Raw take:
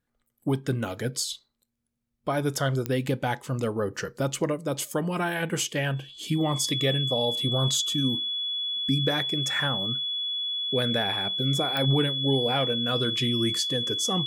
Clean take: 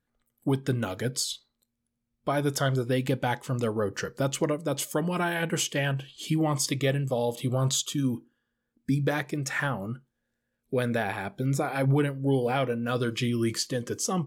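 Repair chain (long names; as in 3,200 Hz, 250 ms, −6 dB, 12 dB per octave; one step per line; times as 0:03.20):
click removal
notch filter 3,400 Hz, Q 30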